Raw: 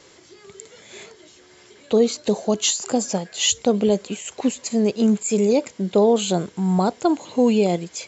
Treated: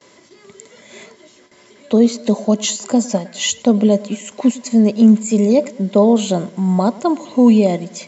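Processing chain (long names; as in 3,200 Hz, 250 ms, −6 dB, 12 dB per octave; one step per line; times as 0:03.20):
high-pass filter 97 Hz 12 dB per octave
noise gate with hold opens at −40 dBFS
hollow resonant body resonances 230/590/1,000/2,000 Hz, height 10 dB
on a send: feedback echo with a low-pass in the loop 106 ms, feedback 48%, low-pass 2,500 Hz, level −20 dB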